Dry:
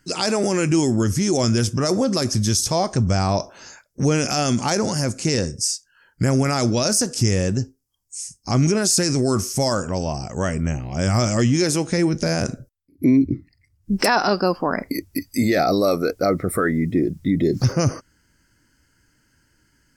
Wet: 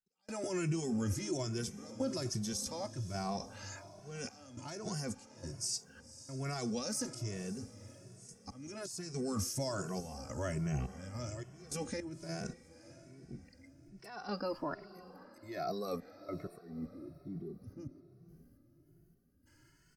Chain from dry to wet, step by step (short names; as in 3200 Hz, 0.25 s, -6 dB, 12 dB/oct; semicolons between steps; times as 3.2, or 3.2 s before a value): spectral gain 16.61–19.46, 430–9900 Hz -20 dB; reverse; compressor 16:1, threshold -27 dBFS, peak gain reduction 15.5 dB; reverse; auto swell 0.453 s; random-step tremolo, depth 100%; limiter -26 dBFS, peak gain reduction 7 dB; diffused feedback echo 0.534 s, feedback 43%, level -15.5 dB; endless flanger 2.2 ms +1.2 Hz; gain +2 dB